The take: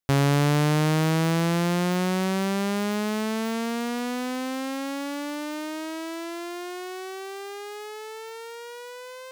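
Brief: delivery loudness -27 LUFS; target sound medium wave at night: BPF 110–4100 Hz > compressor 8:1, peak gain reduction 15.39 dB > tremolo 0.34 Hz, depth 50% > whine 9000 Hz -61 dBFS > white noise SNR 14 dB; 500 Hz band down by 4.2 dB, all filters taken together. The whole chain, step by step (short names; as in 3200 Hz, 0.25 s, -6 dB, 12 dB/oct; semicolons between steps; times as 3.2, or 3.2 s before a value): BPF 110–4100 Hz; bell 500 Hz -5.5 dB; compressor 8:1, threshold -34 dBFS; tremolo 0.34 Hz, depth 50%; whine 9000 Hz -61 dBFS; white noise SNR 14 dB; gain +13.5 dB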